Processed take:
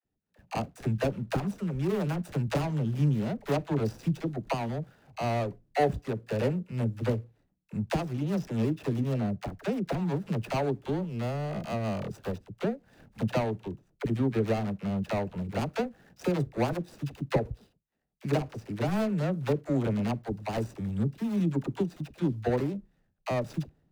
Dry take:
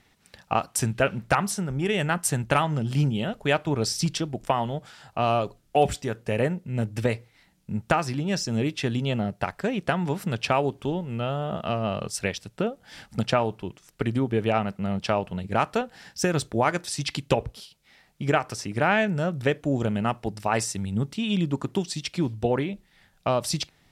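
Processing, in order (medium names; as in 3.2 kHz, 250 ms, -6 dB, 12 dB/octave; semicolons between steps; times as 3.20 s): median filter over 41 samples; expander -56 dBFS; phase dispersion lows, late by 50 ms, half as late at 480 Hz; trim -2 dB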